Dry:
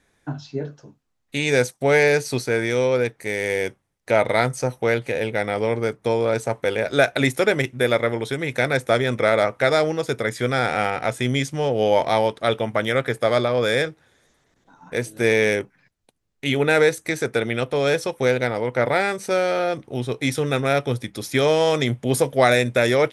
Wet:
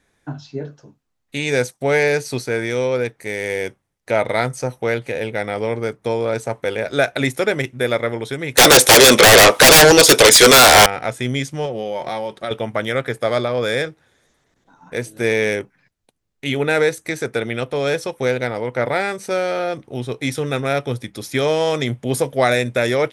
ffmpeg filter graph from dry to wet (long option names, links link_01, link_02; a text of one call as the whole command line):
ffmpeg -i in.wav -filter_complex "[0:a]asettb=1/sr,asplit=3[link_01][link_02][link_03];[link_01]atrim=end=8.574[link_04];[link_02]atrim=start=8.57:end=10.86,asetpts=PTS-STARTPTS,afade=type=in:duration=0.004:curve=qsin,afade=type=out:start_time=2.286:duration=0.004:curve=qsin,highpass=390,highshelf=frequency=2600:width_type=q:width=1.5:gain=7,aeval=exprs='0.631*sin(PI/2*8.91*val(0)/0.631)':channel_layout=same[link_05];[link_03]atrim=start=10.856[link_06];[link_04][link_05]acrossfade=duration=0.004:curve1=hsin:curve2=qsin[link_07];[link_07][link_06]acrossfade=duration=0.004:curve1=qsin:curve2=hsin,asettb=1/sr,asplit=3[link_08][link_09][link_10];[link_08]atrim=end=11.654[link_11];[link_09]atrim=start=11.65:end=12.51,asetpts=PTS-STARTPTS,afade=type=in:duration=0.004:curve=qsin,afade=type=out:start_time=0.856:duration=0.004:curve=qsin,aecho=1:1:5.4:0.43,atrim=end_sample=37926,acompressor=threshold=-21dB:ratio=6:attack=3.2:release=140:knee=1:detection=peak[link_12];[link_10]atrim=start=12.506[link_13];[link_11][link_12]acrossfade=duration=0.004:curve1=hsin:curve2=qsin[link_14];[link_14][link_13]acrossfade=duration=0.004:curve1=qsin:curve2=hsin" out.wav